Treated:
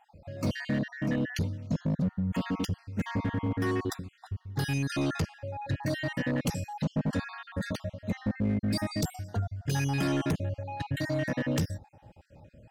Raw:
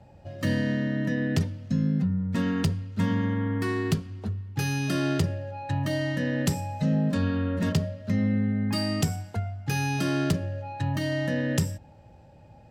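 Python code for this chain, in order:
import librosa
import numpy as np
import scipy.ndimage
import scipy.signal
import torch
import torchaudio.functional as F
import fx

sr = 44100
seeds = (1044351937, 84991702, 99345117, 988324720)

y = fx.spec_dropout(x, sr, seeds[0], share_pct=45)
y = np.clip(10.0 ** (23.5 / 20.0) * y, -1.0, 1.0) / 10.0 ** (23.5 / 20.0)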